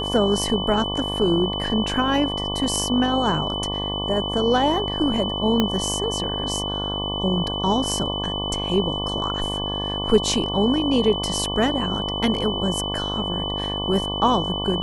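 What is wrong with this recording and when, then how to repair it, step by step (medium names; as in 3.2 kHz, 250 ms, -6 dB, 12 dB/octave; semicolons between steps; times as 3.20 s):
buzz 50 Hz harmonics 23 -29 dBFS
whine 3 kHz -27 dBFS
5.60 s: pop -6 dBFS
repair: de-click; de-hum 50 Hz, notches 23; band-stop 3 kHz, Q 30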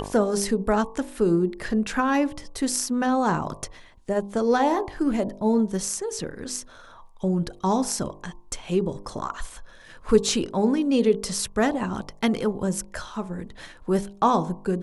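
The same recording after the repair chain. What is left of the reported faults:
5.60 s: pop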